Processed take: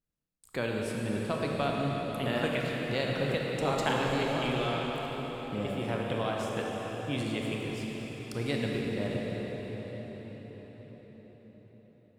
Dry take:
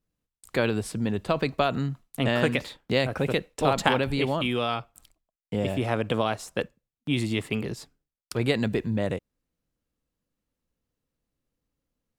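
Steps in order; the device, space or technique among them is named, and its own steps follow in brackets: cathedral (reverb RT60 5.9 s, pre-delay 24 ms, DRR -2 dB); gain -8.5 dB

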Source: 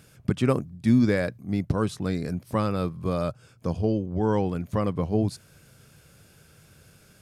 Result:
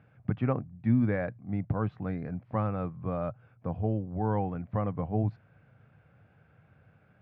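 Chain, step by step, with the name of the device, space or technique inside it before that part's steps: bass cabinet (speaker cabinet 69–2200 Hz, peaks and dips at 110 Hz +6 dB, 380 Hz -6 dB, 760 Hz +7 dB); gain -6 dB

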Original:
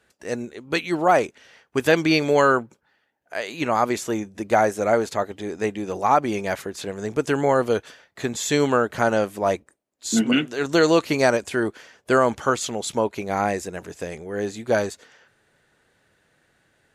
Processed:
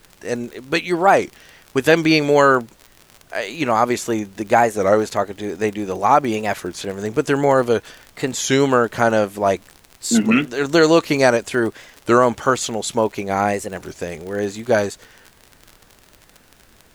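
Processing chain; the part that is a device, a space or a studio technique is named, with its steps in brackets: warped LP (record warp 33 1/3 rpm, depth 160 cents; crackle 44/s -31 dBFS; pink noise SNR 34 dB); gain +4 dB

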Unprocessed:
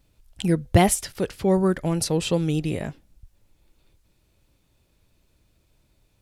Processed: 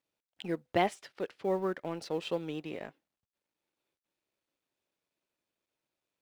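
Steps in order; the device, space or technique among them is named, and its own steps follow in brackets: phone line with mismatched companding (BPF 340–3400 Hz; G.711 law mismatch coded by A); gain -7 dB

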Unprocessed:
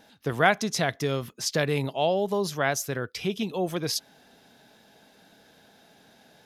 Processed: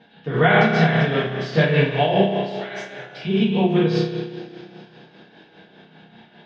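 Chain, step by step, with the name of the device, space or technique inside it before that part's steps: 2.23–3.25 pre-emphasis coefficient 0.97; two-slope reverb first 0.5 s, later 4.4 s, from -22 dB, DRR -7.5 dB; combo amplifier with spring reverb and tremolo (spring tank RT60 1.7 s, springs 31 ms, chirp 35 ms, DRR 0.5 dB; tremolo 5 Hz, depth 53%; speaker cabinet 87–3500 Hz, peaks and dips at 170 Hz +3 dB, 560 Hz -4 dB, 1300 Hz -3 dB, 3100 Hz +4 dB)

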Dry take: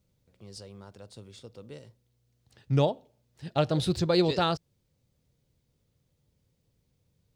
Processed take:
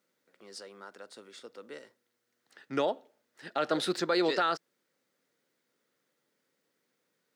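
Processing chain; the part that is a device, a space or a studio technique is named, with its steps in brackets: laptop speaker (HPF 260 Hz 24 dB/oct; bell 1400 Hz +10 dB 0.6 oct; bell 1900 Hz +7 dB 0.38 oct; limiter -18 dBFS, peak gain reduction 9 dB)

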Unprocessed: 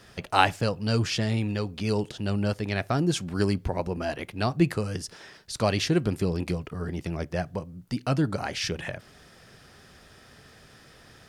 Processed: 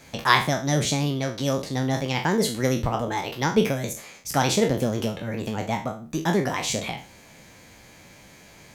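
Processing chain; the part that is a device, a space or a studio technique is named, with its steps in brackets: spectral trails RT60 0.47 s; nightcore (varispeed +29%); gain +1.5 dB

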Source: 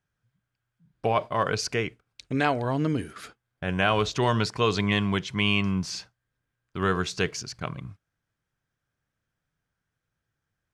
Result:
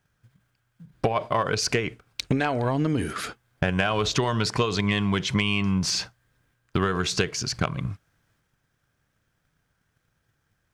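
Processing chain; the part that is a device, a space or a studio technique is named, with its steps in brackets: drum-bus smash (transient shaper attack +9 dB, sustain +5 dB; compressor 16:1, threshold -27 dBFS, peak gain reduction 15.5 dB; soft clip -19 dBFS, distortion -21 dB); gain +8.5 dB

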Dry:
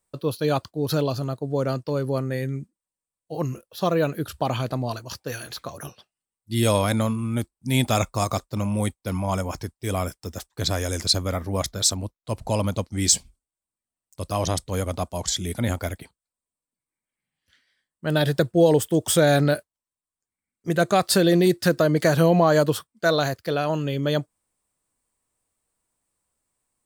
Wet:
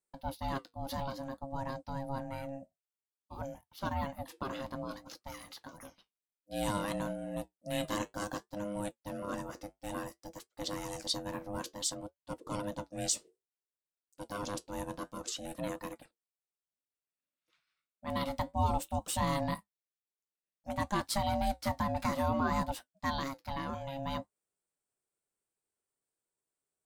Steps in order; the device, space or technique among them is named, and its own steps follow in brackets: alien voice (ring modulator 410 Hz; flange 0.57 Hz, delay 5.4 ms, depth 4.9 ms, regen -65%); gain -6.5 dB

